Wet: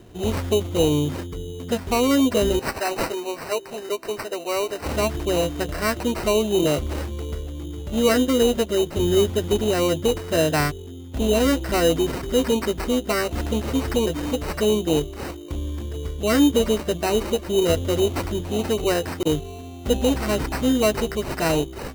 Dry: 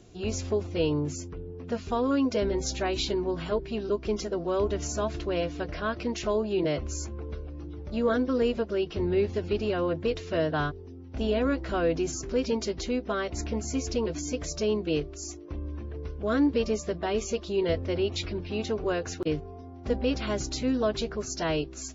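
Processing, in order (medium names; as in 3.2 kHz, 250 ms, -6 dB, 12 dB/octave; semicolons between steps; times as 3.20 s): 2.59–4.86 s: high-pass 550 Hz 12 dB/octave; sample-and-hold 13×; trim +7 dB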